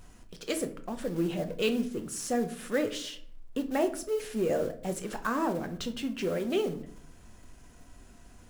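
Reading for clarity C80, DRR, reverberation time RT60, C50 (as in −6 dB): 18.0 dB, 7.0 dB, 0.55 s, 13.5 dB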